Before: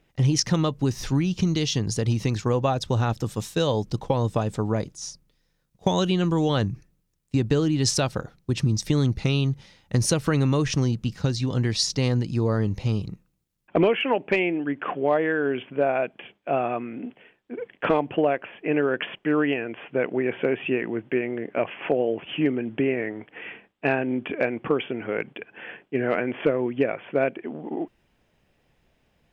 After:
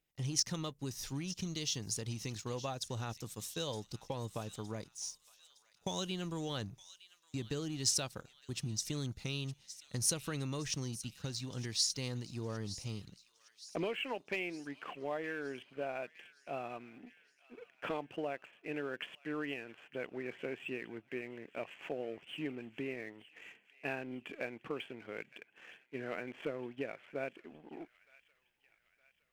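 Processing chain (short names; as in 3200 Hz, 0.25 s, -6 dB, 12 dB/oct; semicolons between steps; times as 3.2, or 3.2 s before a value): pre-emphasis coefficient 0.8; sample leveller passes 1; on a send: thin delay 0.914 s, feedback 48%, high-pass 1900 Hz, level -14.5 dB; on the sum: gain -7.5 dB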